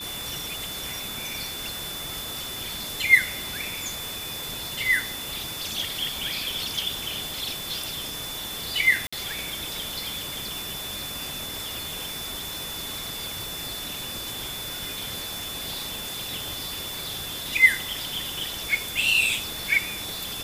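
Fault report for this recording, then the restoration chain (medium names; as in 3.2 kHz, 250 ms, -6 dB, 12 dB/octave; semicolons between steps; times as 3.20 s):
whine 3.5 kHz -35 dBFS
9.07–9.12 s: dropout 55 ms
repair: band-stop 3.5 kHz, Q 30; interpolate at 9.07 s, 55 ms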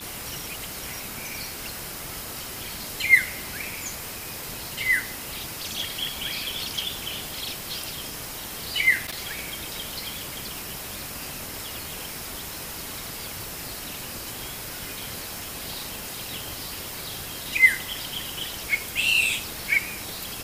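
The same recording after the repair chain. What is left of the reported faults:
nothing left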